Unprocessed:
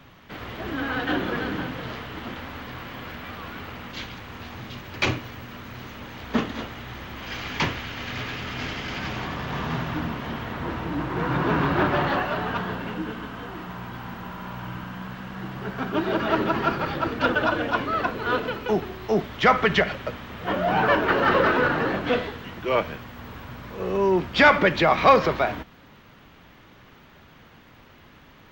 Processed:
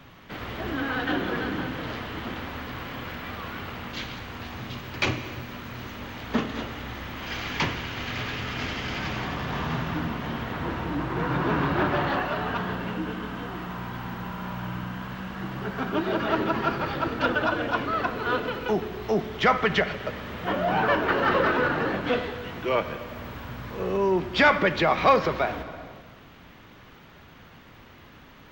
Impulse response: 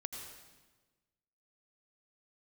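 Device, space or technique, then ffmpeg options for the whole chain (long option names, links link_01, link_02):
compressed reverb return: -filter_complex "[0:a]asplit=2[link_01][link_02];[1:a]atrim=start_sample=2205[link_03];[link_02][link_03]afir=irnorm=-1:irlink=0,acompressor=threshold=-30dB:ratio=6,volume=1.5dB[link_04];[link_01][link_04]amix=inputs=2:normalize=0,volume=-4.5dB"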